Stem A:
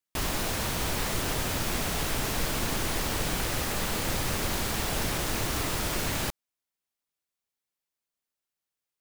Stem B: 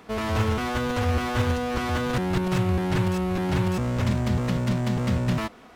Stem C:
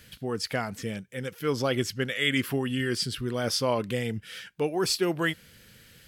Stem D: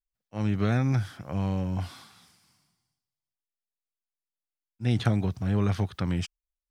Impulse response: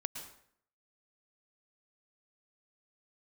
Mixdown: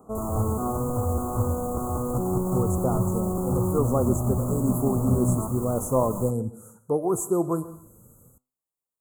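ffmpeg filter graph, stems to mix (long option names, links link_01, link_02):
-filter_complex "[0:a]alimiter=level_in=1dB:limit=-24dB:level=0:latency=1,volume=-1dB,volume=3dB[link_01];[1:a]bandreject=frequency=950:width=9,acontrast=38,volume=-4.5dB,asplit=2[link_02][link_03];[link_03]volume=-9.5dB[link_04];[2:a]dynaudnorm=framelen=110:gausssize=5:maxgain=4.5dB,adelay=2300,volume=0.5dB,asplit=2[link_05][link_06];[link_06]volume=-7dB[link_07];[3:a]volume=-7.5dB[link_08];[4:a]atrim=start_sample=2205[link_09];[link_04][link_07]amix=inputs=2:normalize=0[link_10];[link_10][link_09]afir=irnorm=-1:irlink=0[link_11];[link_01][link_02][link_05][link_08][link_11]amix=inputs=5:normalize=0,flanger=delay=7.7:depth=1.1:regen=84:speed=0.34:shape=sinusoidal,asuperstop=centerf=3000:order=20:qfactor=0.54"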